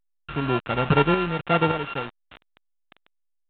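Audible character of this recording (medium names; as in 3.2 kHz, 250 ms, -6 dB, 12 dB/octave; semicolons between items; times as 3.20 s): a buzz of ramps at a fixed pitch in blocks of 32 samples; random-step tremolo 3.5 Hz, depth 85%; a quantiser's noise floor 6-bit, dither none; A-law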